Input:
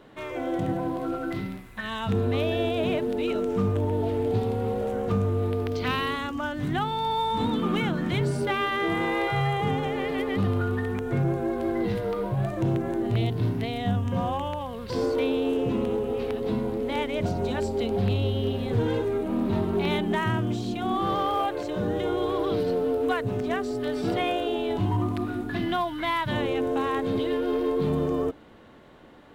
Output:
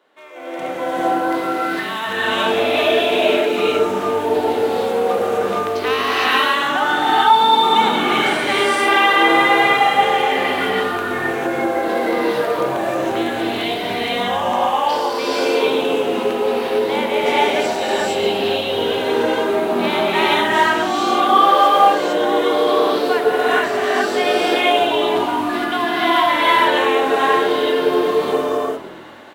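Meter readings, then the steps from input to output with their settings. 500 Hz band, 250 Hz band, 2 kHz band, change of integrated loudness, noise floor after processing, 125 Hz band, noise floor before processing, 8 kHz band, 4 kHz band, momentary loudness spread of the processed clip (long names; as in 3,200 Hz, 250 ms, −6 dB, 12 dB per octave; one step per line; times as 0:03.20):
+10.0 dB, +4.0 dB, +15.5 dB, +10.5 dB, −25 dBFS, −10.5 dB, −37 dBFS, +15.5 dB, +15.5 dB, 8 LU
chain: high-pass filter 540 Hz 12 dB per octave
automatic gain control gain up to 12.5 dB
on a send: echo with shifted repeats 134 ms, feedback 53%, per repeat −42 Hz, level −15 dB
on the sum: reverb whose tail is shaped and stops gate 490 ms rising, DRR −8 dB
level −5.5 dB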